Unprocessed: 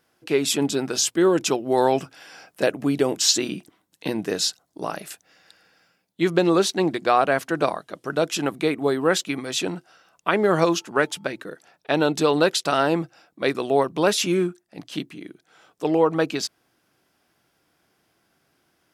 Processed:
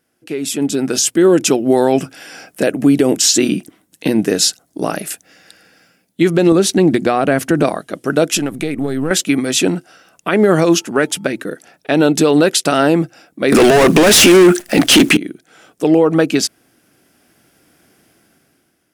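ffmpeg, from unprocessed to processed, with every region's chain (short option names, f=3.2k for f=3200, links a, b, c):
-filter_complex "[0:a]asettb=1/sr,asplit=3[a][b][c];[a]atrim=end=6.524[d];[b]atrim=start=6.52:end=7.65,asetpts=PTS-STARTPTS,afade=t=in:d=0.004:c=qsin,afade=t=out:st=1.126:d=0.004:c=qsin,lowshelf=f=260:g=8.5,acompressor=threshold=-21dB:ratio=2.5:attack=3.2:release=140:knee=1:detection=peak[e];[c]atrim=start=7.646[f];[d][e]acrossfade=d=0.004:c1=hsin:c2=qsin[g];[g][f]acrossfade=d=0.004:c1=qsin:c2=hsin,asettb=1/sr,asplit=3[h][i][j];[h]atrim=end=8.374[k];[i]atrim=start=8.37:end=9.11,asetpts=PTS-STARTPTS,afade=t=in:d=0.004:c=qsin,afade=t=out:st=0.736:d=0.004:c=qsin,aeval=exprs='if(lt(val(0),0),0.708*val(0),val(0))':c=same,asubboost=boost=9:cutoff=210,acompressor=threshold=-28dB:ratio=4:attack=3.2:release=140:knee=1:detection=peak[l];[j]atrim=start=9.106[m];[k][l]acrossfade=d=0.004:c1=hsin:c2=qsin[n];[n][m]acrossfade=d=0.004:c1=qsin:c2=hsin,asettb=1/sr,asplit=3[o][p][q];[o]atrim=end=13.524[r];[p]atrim=start=13.52:end=15.17,asetpts=PTS-STARTPTS,afade=t=in:d=0.004:c=qsin,afade=t=out:st=1.646:d=0.004:c=qsin,asplit=2[s][t];[t]highpass=f=720:p=1,volume=36dB,asoftclip=type=tanh:threshold=-6dB[u];[s][u]amix=inputs=2:normalize=0,lowpass=f=4.8k:p=1,volume=-6dB,acompressor=threshold=-15dB:ratio=6:attack=3.2:release=140:knee=1:detection=peak,acrusher=bits=8:dc=4:mix=0:aa=0.000001[v];[q]atrim=start=15.166[w];[r][v]acrossfade=d=0.004:c1=hsin:c2=qsin[x];[x][w]acrossfade=d=0.004:c1=qsin:c2=hsin,equalizer=f=250:t=o:w=0.67:g=5,equalizer=f=1k:t=o:w=0.67:g=-7,equalizer=f=4k:t=o:w=0.67:g=-4,equalizer=f=10k:t=o:w=0.67:g=5,alimiter=limit=-13dB:level=0:latency=1:release=102,dynaudnorm=f=180:g=9:m=13.5dB"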